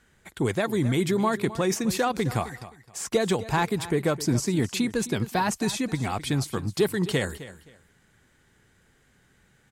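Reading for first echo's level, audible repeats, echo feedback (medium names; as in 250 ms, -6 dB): -15.5 dB, 2, 24%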